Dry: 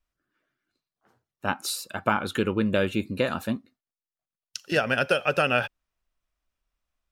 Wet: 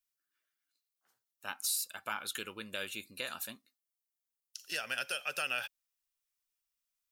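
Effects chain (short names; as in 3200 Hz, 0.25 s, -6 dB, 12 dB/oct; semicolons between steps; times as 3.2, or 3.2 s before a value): pre-emphasis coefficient 0.97; limiter -25 dBFS, peak gain reduction 10.5 dB; gain +2.5 dB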